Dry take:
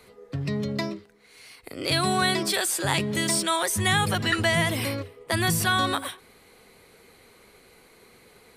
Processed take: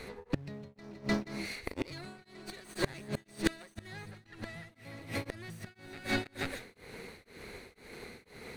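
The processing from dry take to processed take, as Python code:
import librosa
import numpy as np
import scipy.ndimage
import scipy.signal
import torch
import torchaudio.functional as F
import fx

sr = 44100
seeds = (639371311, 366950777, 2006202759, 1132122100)

p1 = fx.lower_of_two(x, sr, delay_ms=0.47)
p2 = fx.quant_dither(p1, sr, seeds[0], bits=6, dither='none')
p3 = p1 + (p2 * librosa.db_to_amplitude(-10.5))
p4 = fx.echo_multitap(p3, sr, ms=(161, 302, 479), db=(-14.0, -8.5, -16.0))
p5 = fx.rider(p4, sr, range_db=5, speed_s=0.5)
p6 = fx.lowpass(p5, sr, hz=3400.0, slope=6)
p7 = fx.gate_flip(p6, sr, shuts_db=-17.0, range_db=-27)
p8 = p7 * np.abs(np.cos(np.pi * 2.0 * np.arange(len(p7)) / sr))
y = p8 * librosa.db_to_amplitude(5.5)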